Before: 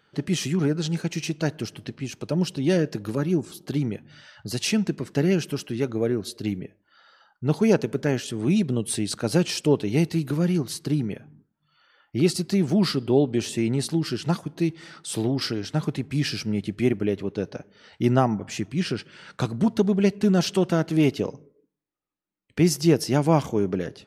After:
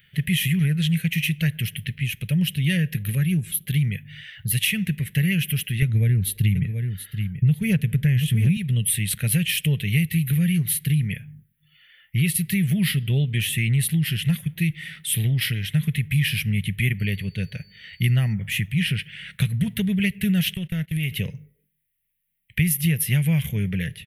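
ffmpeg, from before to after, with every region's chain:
ffmpeg -i in.wav -filter_complex "[0:a]asettb=1/sr,asplit=3[link_01][link_02][link_03];[link_01]atrim=end=5.824[link_04];[link_02]atrim=start=5.82:end=8.57,asetpts=PTS-STARTPTS,afade=type=in:duration=0.004:curve=qsin,afade=type=out:start_time=2.746:duration=0.004:curve=qsin,lowshelf=frequency=250:gain=12,aecho=1:1:732:0.266,atrim=end_sample=121275[link_05];[link_03]atrim=start=8.566[link_06];[link_04][link_05]acrossfade=duration=0.004:curve1=hsin:curve2=qsin[link_07];[link_07][link_06]acrossfade=duration=0.004:curve1=qsin:curve2=hsin,asettb=1/sr,asplit=3[link_08][link_09][link_10];[link_08]atrim=end=16.994[link_11];[link_09]atrim=start=16.99:end=18.33,asetpts=PTS-STARTPTS,afade=type=in:duration=0.004:curve=qsin,afade=type=out:start_time=1.336:duration=0.004:curve=qsin,bandreject=frequency=5300:width=20,aeval=exprs='val(0)+0.00398*sin(2*PI*4500*n/s)':channel_layout=same[link_12];[link_10]atrim=start=18.326[link_13];[link_11][link_12]acrossfade=duration=0.004:curve1=hsin:curve2=qsin[link_14];[link_14][link_13]acrossfade=duration=0.004:curve1=qsin:curve2=hsin,asettb=1/sr,asplit=3[link_15][link_16][link_17];[link_15]atrim=end=20.544[link_18];[link_16]atrim=start=20.54:end=21.11,asetpts=PTS-STARTPTS,afade=type=in:duration=0.004:curve=qsin,afade=type=out:start_time=0.566:duration=0.004:curve=qsin,agate=range=-20dB:threshold=-30dB:ratio=16:release=100:detection=peak,acompressor=threshold=-26dB:ratio=4:attack=3.2:release=140:knee=1:detection=peak[link_19];[link_17]atrim=start=21.106[link_20];[link_18][link_19]acrossfade=duration=0.004:curve1=hsin:curve2=qsin[link_21];[link_21][link_20]acrossfade=duration=0.004:curve1=qsin:curve2=hsin,firequalizer=gain_entry='entry(160,0);entry(290,-26);entry(490,-18);entry(790,-26);entry(1200,-23);entry(1900,6);entry(3300,3);entry(4700,-16);entry(7200,-11);entry(11000,14)':delay=0.05:min_phase=1,acompressor=threshold=-26dB:ratio=6,lowshelf=frequency=86:gain=7,volume=7.5dB" out.wav

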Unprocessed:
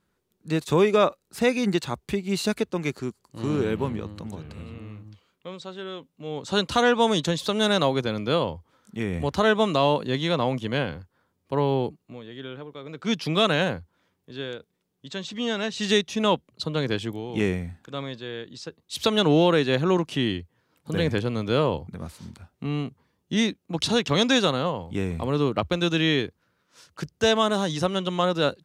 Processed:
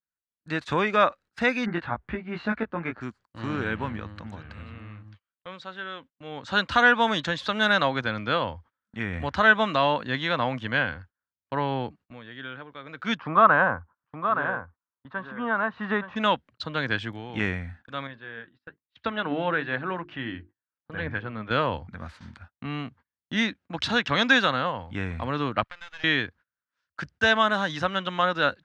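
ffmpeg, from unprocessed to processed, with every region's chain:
ffmpeg -i in.wav -filter_complex "[0:a]asettb=1/sr,asplit=3[link_01][link_02][link_03];[link_01]atrim=end=1.664[link_04];[link_02]atrim=start=1.66:end=3.01,asetpts=PTS-STARTPTS,afade=type=in:duration=0.004:curve=qsin,afade=type=out:start_time=1.346:duration=0.004:curve=qsin,lowpass=1700,asplit=2[link_05][link_06];[link_06]adelay=18,volume=-4dB[link_07];[link_05][link_07]amix=inputs=2:normalize=0,atrim=end_sample=59535[link_08];[link_03]atrim=start=3.006[link_09];[link_04][link_08]acrossfade=duration=0.004:curve1=hsin:curve2=qsin[link_10];[link_10][link_09]acrossfade=duration=0.004:curve1=qsin:curve2=hsin,asettb=1/sr,asplit=3[link_11][link_12][link_13];[link_11]atrim=end=13.174[link_14];[link_12]atrim=start=13.17:end=16.16,asetpts=PTS-STARTPTS,afade=type=in:duration=0.004:curve=qsin,afade=type=out:start_time=2.986:duration=0.004:curve=qsin,lowpass=frequency=1100:width_type=q:width=3.5,aecho=1:1:870:0.398,atrim=end_sample=131859[link_15];[link_13]atrim=start=16.156[link_16];[link_14][link_15]acrossfade=duration=0.004:curve1=hsin:curve2=qsin[link_17];[link_17][link_16]acrossfade=duration=0.004:curve1=qsin:curve2=hsin,asettb=1/sr,asplit=3[link_18][link_19][link_20];[link_18]atrim=end=18.074[link_21];[link_19]atrim=start=18.07:end=21.51,asetpts=PTS-STARTPTS,afade=type=in:duration=0.004:curve=qsin,afade=type=out:start_time=3.436:duration=0.004:curve=qsin,lowpass=2400,flanger=delay=0.1:depth=6.8:regen=71:speed=1:shape=triangular,bandreject=frequency=50:width_type=h:width=6,bandreject=frequency=100:width_type=h:width=6,bandreject=frequency=150:width_type=h:width=6,bandreject=frequency=200:width_type=h:width=6,bandreject=frequency=250:width_type=h:width=6,bandreject=frequency=300:width_type=h:width=6,bandreject=frequency=350:width_type=h:width=6,bandreject=frequency=400:width_type=h:width=6[link_22];[link_20]atrim=start=21.506[link_23];[link_21][link_22]acrossfade=duration=0.004:curve1=hsin:curve2=qsin[link_24];[link_24][link_23]acrossfade=duration=0.004:curve1=qsin:curve2=hsin,asettb=1/sr,asplit=3[link_25][link_26][link_27];[link_25]atrim=end=25.634[link_28];[link_26]atrim=start=25.63:end=26.04,asetpts=PTS-STARTPTS,afade=type=in:duration=0.004:curve=qsin,afade=type=out:start_time=0.406:duration=0.004:curve=qsin,highpass=830,aeval=exprs='max(val(0),0)':channel_layout=same,acompressor=threshold=-48dB:ratio=2:attack=3.2:release=140:knee=1:detection=peak[link_29];[link_27]atrim=start=26.036[link_30];[link_28][link_29]acrossfade=duration=0.004:curve1=hsin:curve2=qsin[link_31];[link_31][link_30]acrossfade=duration=0.004:curve1=qsin:curve2=hsin,lowpass=3800,agate=range=-29dB:threshold=-46dB:ratio=16:detection=peak,equalizer=frequency=160:width_type=o:width=0.67:gain=-7,equalizer=frequency=400:width_type=o:width=0.67:gain=-10,equalizer=frequency=1600:width_type=o:width=0.67:gain=10" out.wav

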